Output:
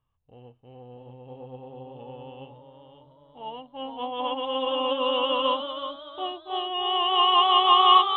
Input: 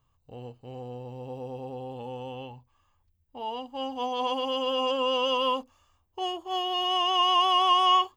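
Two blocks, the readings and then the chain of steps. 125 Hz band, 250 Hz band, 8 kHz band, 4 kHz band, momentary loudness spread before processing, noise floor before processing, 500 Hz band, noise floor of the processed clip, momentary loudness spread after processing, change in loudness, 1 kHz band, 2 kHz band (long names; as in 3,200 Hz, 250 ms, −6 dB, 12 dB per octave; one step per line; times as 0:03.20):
−4.5 dB, +0.5 dB, below −30 dB, +3.0 dB, 20 LU, −71 dBFS, +1.0 dB, −58 dBFS, 25 LU, +3.0 dB, +3.0 dB, +1.5 dB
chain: downsampling to 8,000 Hz
delay with pitch and tempo change per echo 665 ms, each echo +1 semitone, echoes 3, each echo −6 dB
expander for the loud parts 1.5 to 1, over −41 dBFS
level +4.5 dB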